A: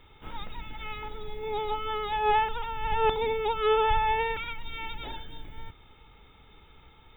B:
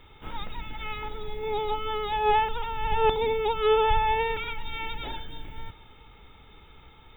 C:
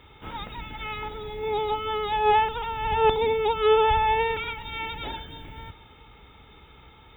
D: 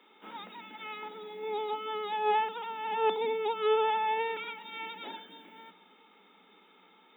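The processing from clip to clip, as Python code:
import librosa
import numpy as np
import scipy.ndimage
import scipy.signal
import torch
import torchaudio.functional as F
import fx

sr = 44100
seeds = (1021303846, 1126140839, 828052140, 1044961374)

y1 = fx.dynamic_eq(x, sr, hz=1500.0, q=1.0, threshold_db=-37.0, ratio=4.0, max_db=-4)
y1 = y1 + 10.0 ** (-22.5 / 20.0) * np.pad(y1, (int(665 * sr / 1000.0), 0))[:len(y1)]
y1 = y1 * 10.0 ** (3.0 / 20.0)
y2 = scipy.signal.sosfilt(scipy.signal.butter(2, 43.0, 'highpass', fs=sr, output='sos'), y1)
y2 = fx.high_shelf(y2, sr, hz=6600.0, db=-3.5)
y2 = y2 * 10.0 ** (2.5 / 20.0)
y3 = scipy.signal.sosfilt(scipy.signal.cheby1(10, 1.0, 180.0, 'highpass', fs=sr, output='sos'), y2)
y3 = y3 * 10.0 ** (-7.0 / 20.0)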